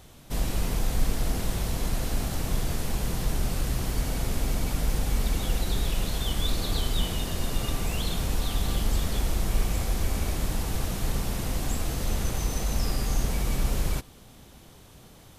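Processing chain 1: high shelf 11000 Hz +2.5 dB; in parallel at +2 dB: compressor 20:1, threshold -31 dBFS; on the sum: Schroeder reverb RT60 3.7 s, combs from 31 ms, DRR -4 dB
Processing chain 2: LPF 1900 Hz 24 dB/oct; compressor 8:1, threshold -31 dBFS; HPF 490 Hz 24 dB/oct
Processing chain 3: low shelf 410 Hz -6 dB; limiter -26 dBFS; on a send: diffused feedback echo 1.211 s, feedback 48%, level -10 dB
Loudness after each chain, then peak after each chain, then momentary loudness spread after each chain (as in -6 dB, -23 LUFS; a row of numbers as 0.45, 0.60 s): -22.0, -50.0, -36.5 LUFS; -4.5, -35.5, -23.0 dBFS; 2, 4, 3 LU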